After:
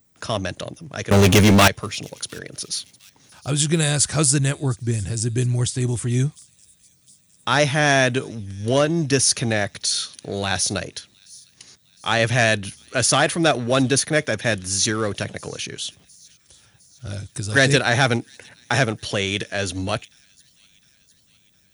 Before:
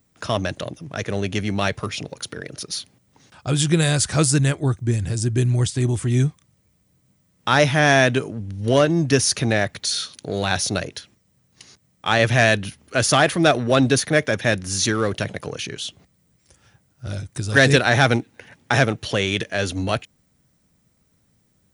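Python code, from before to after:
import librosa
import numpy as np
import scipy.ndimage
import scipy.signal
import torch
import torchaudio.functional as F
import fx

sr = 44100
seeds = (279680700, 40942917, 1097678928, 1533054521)

p1 = fx.leveller(x, sr, passes=5, at=(1.11, 1.68))
p2 = fx.high_shelf(p1, sr, hz=6100.0, db=8.0)
p3 = p2 + fx.echo_wet_highpass(p2, sr, ms=708, feedback_pct=59, hz=4000.0, wet_db=-22, dry=0)
y = F.gain(torch.from_numpy(p3), -2.0).numpy()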